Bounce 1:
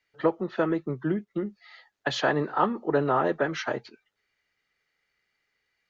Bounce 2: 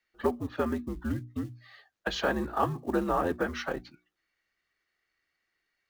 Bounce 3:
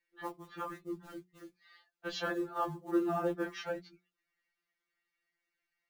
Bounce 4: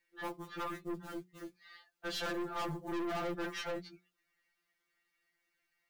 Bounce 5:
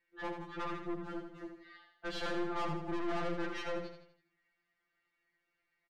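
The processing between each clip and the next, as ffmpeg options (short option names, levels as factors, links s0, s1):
-af "afreqshift=-84,acrusher=bits=7:mode=log:mix=0:aa=0.000001,bandreject=f=60:t=h:w=6,bandreject=f=120:t=h:w=6,bandreject=f=180:t=h:w=6,bandreject=f=240:t=h:w=6,bandreject=f=300:t=h:w=6,bandreject=f=360:t=h:w=6,volume=0.668"
-af "afftfilt=real='re*2.83*eq(mod(b,8),0)':imag='im*2.83*eq(mod(b,8),0)':win_size=2048:overlap=0.75,volume=0.631"
-af "aeval=exprs='(tanh(112*val(0)+0.35)-tanh(0.35))/112':c=same,volume=2"
-filter_complex "[0:a]aeval=exprs='clip(val(0),-1,0.00562)':c=same,adynamicsmooth=sensitivity=4:basefreq=3400,asplit=2[s0][s1];[s1]aecho=0:1:81|162|243|324|405:0.447|0.197|0.0865|0.0381|0.0167[s2];[s0][s2]amix=inputs=2:normalize=0,volume=1.19"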